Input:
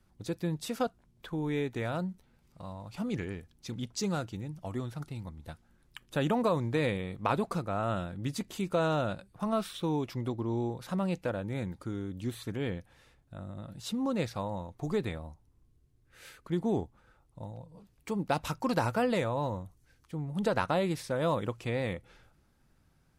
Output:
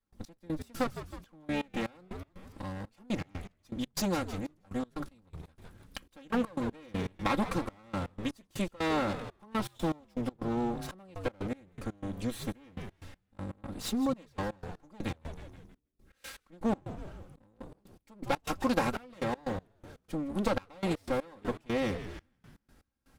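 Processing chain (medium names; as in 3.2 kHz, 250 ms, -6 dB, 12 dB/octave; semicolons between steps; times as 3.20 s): comb filter that takes the minimum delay 3.7 ms; frequency-shifting echo 159 ms, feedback 46%, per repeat -93 Hz, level -13 dB; in parallel at +3 dB: compression, threshold -45 dBFS, peak gain reduction 19 dB; on the sum: trance gate ".x..x.xxxx..x" 121 bpm -24 dB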